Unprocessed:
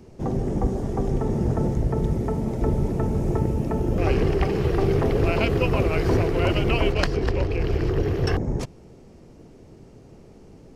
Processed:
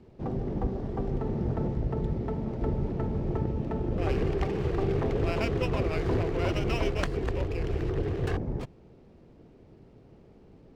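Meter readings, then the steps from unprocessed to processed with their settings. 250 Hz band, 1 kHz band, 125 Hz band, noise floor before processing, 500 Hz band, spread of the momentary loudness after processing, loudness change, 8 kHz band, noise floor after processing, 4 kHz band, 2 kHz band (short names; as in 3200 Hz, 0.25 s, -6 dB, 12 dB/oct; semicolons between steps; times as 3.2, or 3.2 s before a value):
-6.5 dB, -6.5 dB, -6.5 dB, -48 dBFS, -6.5 dB, 4 LU, -6.5 dB, n/a, -55 dBFS, -8.5 dB, -7.5 dB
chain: steep low-pass 4800 Hz; running maximum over 5 samples; gain -6.5 dB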